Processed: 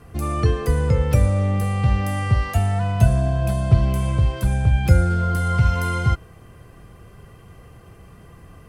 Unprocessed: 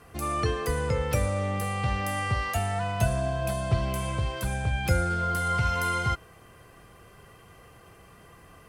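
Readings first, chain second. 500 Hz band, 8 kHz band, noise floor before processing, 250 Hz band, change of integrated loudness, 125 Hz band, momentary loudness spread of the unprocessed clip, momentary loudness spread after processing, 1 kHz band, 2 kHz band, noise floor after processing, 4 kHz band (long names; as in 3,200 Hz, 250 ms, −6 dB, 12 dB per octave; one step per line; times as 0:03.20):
+3.5 dB, 0.0 dB, −53 dBFS, +8.5 dB, +8.0 dB, +11.0 dB, 4 LU, 5 LU, +1.0 dB, +0.5 dB, −46 dBFS, 0.0 dB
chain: low-shelf EQ 330 Hz +12 dB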